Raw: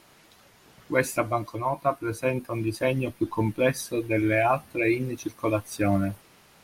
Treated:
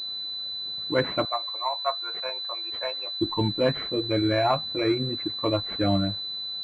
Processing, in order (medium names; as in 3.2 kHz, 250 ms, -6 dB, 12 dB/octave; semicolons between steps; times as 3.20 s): 1.25–3.21 s: high-pass 680 Hz 24 dB/octave; class-D stage that switches slowly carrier 4 kHz